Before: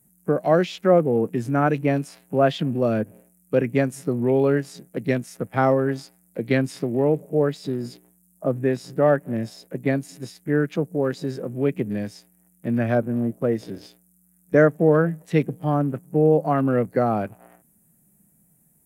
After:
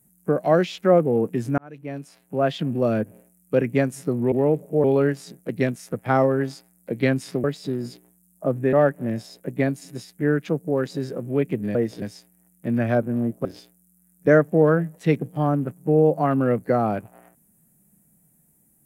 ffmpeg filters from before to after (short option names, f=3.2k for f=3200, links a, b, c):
-filter_complex "[0:a]asplit=9[a][b][c][d][e][f][g][h][i];[a]atrim=end=1.58,asetpts=PTS-STARTPTS,afade=t=out:st=1.576:d=0.004:c=hsin[j];[b]atrim=start=1.58:end=4.322,asetpts=PTS-STARTPTS,afade=t=in:d=1.23[k];[c]atrim=start=6.918:end=7.442[l];[d]atrim=start=4.318:end=6.922[m];[e]atrim=start=7.438:end=8.732[n];[f]atrim=start=8.998:end=12.022[o];[g]atrim=start=13.448:end=13.722[p];[h]atrim=start=12.018:end=13.452[q];[i]atrim=start=13.718[r];[j][k]concat=n=2:v=0:a=1[s];[s][l]acrossfade=d=0.004:c1=hsin:c2=hsin[t];[t][m]acrossfade=d=0.004:c1=hsin:c2=hsin[u];[u][n]acrossfade=d=0.004:c1=hsin:c2=hsin[v];[v][o]acrossfade=d=0.004:c1=hsin:c2=hsin[w];[w][p]acrossfade=d=0.004:c1=hsin:c2=hsin[x];[x][q]acrossfade=d=0.004:c1=hsin:c2=hsin[y];[y][r]acrossfade=d=0.004:c1=hsin:c2=hsin"